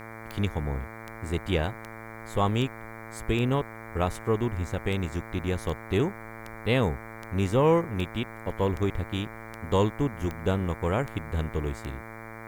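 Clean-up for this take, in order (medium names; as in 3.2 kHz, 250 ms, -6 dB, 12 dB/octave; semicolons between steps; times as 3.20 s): de-click; de-hum 111.8 Hz, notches 21; expander -34 dBFS, range -21 dB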